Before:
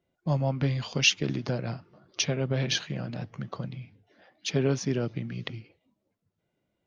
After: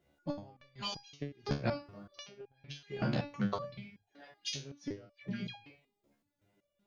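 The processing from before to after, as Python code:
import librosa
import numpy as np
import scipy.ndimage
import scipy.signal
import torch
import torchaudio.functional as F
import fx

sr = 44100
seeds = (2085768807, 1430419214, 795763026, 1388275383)

y = fx.gate_flip(x, sr, shuts_db=-19.0, range_db=-29)
y = fx.dispersion(y, sr, late='lows', ms=104.0, hz=1100.0, at=(5.11, 5.56))
y = fx.resonator_held(y, sr, hz=5.3, low_hz=71.0, high_hz=820.0)
y = F.gain(torch.from_numpy(y), 14.0).numpy()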